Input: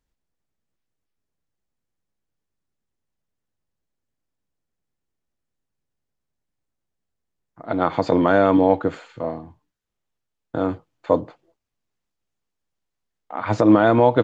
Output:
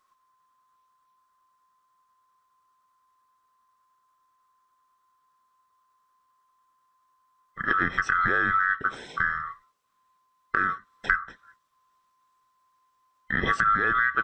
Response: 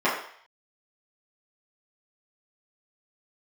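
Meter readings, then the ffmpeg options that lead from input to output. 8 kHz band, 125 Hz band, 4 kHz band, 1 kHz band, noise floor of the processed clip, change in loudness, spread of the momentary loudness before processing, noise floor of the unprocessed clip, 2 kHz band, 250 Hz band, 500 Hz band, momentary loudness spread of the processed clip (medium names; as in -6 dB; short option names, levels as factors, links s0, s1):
no reading, -12.5 dB, -2.0 dB, -2.5 dB, -71 dBFS, -5.5 dB, 16 LU, -81 dBFS, +8.5 dB, -19.0 dB, -20.5 dB, 10 LU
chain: -af "afftfilt=real='real(if(lt(b,960),b+48*(1-2*mod(floor(b/48),2)),b),0)':imag='imag(if(lt(b,960),b+48*(1-2*mod(floor(b/48),2)),b),0)':win_size=2048:overlap=0.75,acompressor=threshold=0.0282:ratio=5,volume=2.66"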